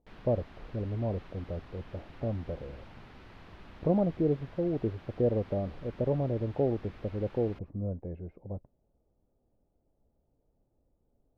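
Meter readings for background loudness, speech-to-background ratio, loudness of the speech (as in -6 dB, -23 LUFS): -52.5 LUFS, 19.5 dB, -33.0 LUFS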